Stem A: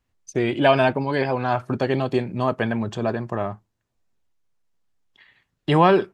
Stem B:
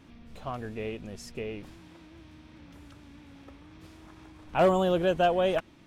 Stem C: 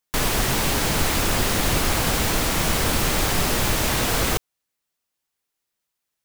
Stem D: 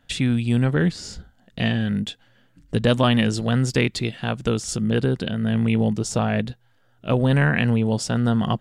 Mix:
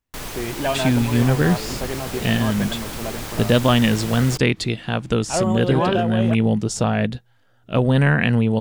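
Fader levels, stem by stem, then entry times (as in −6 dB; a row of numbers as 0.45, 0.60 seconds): −6.5, −0.5, −10.0, +2.0 decibels; 0.00, 0.75, 0.00, 0.65 seconds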